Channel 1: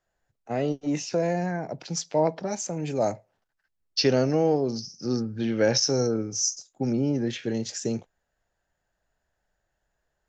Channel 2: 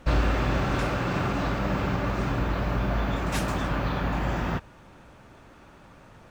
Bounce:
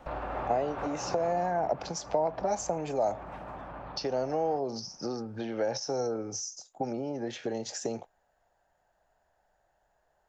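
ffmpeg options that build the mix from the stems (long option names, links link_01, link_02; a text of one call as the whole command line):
ffmpeg -i stem1.wav -i stem2.wav -filter_complex "[0:a]acompressor=threshold=-30dB:ratio=6,volume=-0.5dB,asplit=2[link_01][link_02];[1:a]acrossover=split=3100[link_03][link_04];[link_04]acompressor=threshold=-59dB:ratio=4:attack=1:release=60[link_05];[link_03][link_05]amix=inputs=2:normalize=0,alimiter=limit=-22dB:level=0:latency=1:release=61,volume=-7.5dB,afade=type=out:start_time=1.13:duration=0.61:silence=0.334965[link_06];[link_02]apad=whole_len=278030[link_07];[link_06][link_07]sidechaincompress=threshold=-37dB:ratio=8:attack=44:release=262[link_08];[link_01][link_08]amix=inputs=2:normalize=0,acrossover=split=350|1500|3700[link_09][link_10][link_11][link_12];[link_09]acompressor=threshold=-41dB:ratio=4[link_13];[link_10]acompressor=threshold=-34dB:ratio=4[link_14];[link_11]acompressor=threshold=-53dB:ratio=4[link_15];[link_12]acompressor=threshold=-36dB:ratio=4[link_16];[link_13][link_14][link_15][link_16]amix=inputs=4:normalize=0,equalizer=frequency=770:width=1.1:gain=13" out.wav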